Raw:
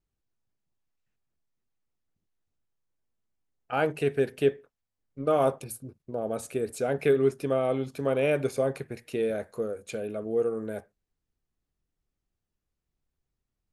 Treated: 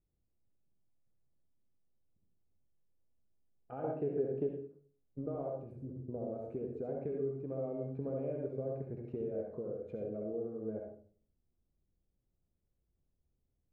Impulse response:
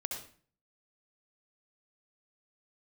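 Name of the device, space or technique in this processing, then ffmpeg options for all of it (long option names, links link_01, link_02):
television next door: -filter_complex "[0:a]acompressor=threshold=-39dB:ratio=4,lowpass=560[link_01];[1:a]atrim=start_sample=2205[link_02];[link_01][link_02]afir=irnorm=-1:irlink=0,asettb=1/sr,asplit=3[link_03][link_04][link_05];[link_03]atrim=end=3.844[link_06];[link_04]atrim=start=3.84:end=4.47,asetpts=PTS-STARTPTS,afade=type=in:duration=0.004:curve=qsin,afade=type=out:start_time=0.626:duration=0.004:curve=qsin,equalizer=frequency=550:width=0.32:gain=5.5[link_07];[link_05]atrim=start=4.466[link_08];[link_06][link_07]acrossfade=duration=0.004:curve1=hsin:curve2=qsin[link_09];[link_09][link_08]acrossfade=duration=0.004:curve1=qsin:curve2=hsin,volume=2dB"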